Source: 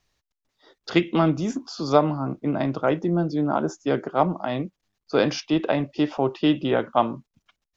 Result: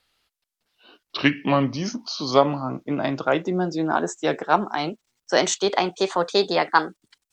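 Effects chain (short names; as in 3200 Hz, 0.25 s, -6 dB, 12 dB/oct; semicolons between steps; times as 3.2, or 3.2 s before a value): speed glide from 71% -> 141%; tilt +2 dB/oct; gain +2.5 dB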